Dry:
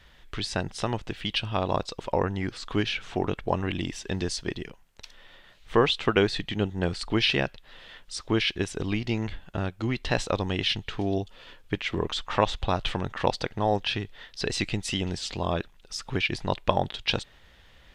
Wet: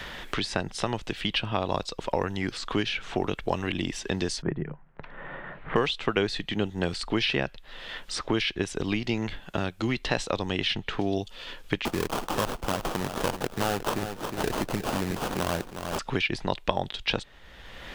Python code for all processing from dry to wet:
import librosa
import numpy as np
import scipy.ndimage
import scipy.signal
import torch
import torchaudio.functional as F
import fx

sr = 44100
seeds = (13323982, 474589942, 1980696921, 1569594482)

y = fx.chain(x, sr, fx.lowpass(hz=1700.0, slope=24),
    fx.peak_eq(hz=150.0, db=12.5, octaves=0.39), at=(4.42, 5.76))
y = fx.chain(y, sr, fx.sample_hold(seeds[0], rate_hz=2100.0, jitter_pct=20),
    fx.clip_hard(threshold_db=-20.5),
    fx.echo_feedback(ms=361, feedback_pct=19, wet_db=-11.5), at=(11.85, 15.99))
y = fx.peak_eq(y, sr, hz=92.0, db=-5.0, octaves=1.2)
y = fx.band_squash(y, sr, depth_pct=70)